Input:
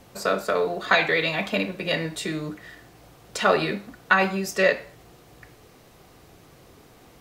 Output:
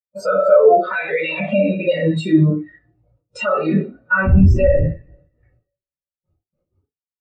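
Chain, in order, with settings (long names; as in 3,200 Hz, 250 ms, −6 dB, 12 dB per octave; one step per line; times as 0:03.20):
0:04.23–0:04.81: wind on the microphone 200 Hz −19 dBFS
noise gate with hold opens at −40 dBFS
coupled-rooms reverb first 0.47 s, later 2.4 s, from −27 dB, DRR −8 dB
boost into a limiter +15.5 dB
every bin expanded away from the loudest bin 2.5 to 1
level −1 dB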